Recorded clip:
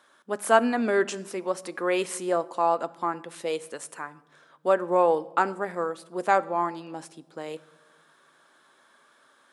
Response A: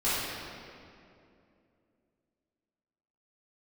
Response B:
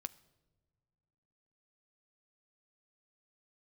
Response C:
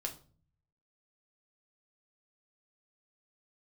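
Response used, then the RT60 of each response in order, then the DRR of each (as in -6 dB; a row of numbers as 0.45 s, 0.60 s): B; 2.6 s, no single decay rate, 0.40 s; -13.5 dB, 13.5 dB, 1.0 dB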